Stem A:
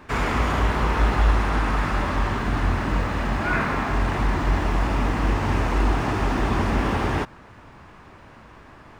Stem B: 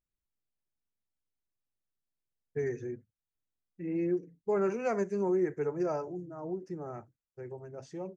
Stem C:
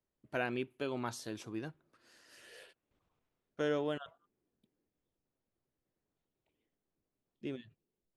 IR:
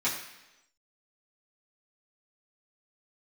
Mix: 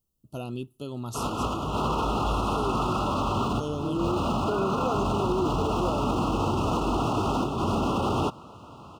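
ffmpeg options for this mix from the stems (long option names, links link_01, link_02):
-filter_complex "[0:a]highpass=99,alimiter=limit=-18dB:level=0:latency=1:release=17,adelay=1050,volume=2dB[link_01];[1:a]volume=2.5dB[link_02];[2:a]bass=frequency=250:gain=14,treble=frequency=4000:gain=8,highshelf=frequency=8800:gain=10,volume=-2.5dB,asplit=2[link_03][link_04];[link_04]apad=whole_len=443069[link_05];[link_01][link_05]sidechaincompress=threshold=-40dB:ratio=4:attack=5.8:release=134[link_06];[link_06][link_02][link_03]amix=inputs=3:normalize=0,asuperstop=centerf=1900:order=20:qfactor=1.6,alimiter=limit=-17.5dB:level=0:latency=1:release=30"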